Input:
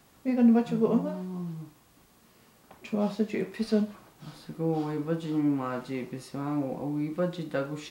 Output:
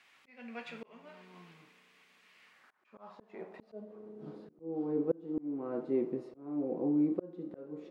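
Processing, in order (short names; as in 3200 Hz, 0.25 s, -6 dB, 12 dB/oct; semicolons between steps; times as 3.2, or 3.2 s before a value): spring tank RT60 3.2 s, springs 33 ms, chirp 70 ms, DRR 18 dB; band-pass sweep 2300 Hz -> 380 Hz, 2.41–4.12; auto swell 0.548 s; gain +7 dB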